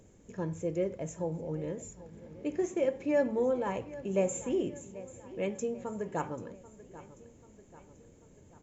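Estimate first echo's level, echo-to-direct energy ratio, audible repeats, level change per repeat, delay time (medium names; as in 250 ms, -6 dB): -17.0 dB, -15.5 dB, 3, -5.5 dB, 788 ms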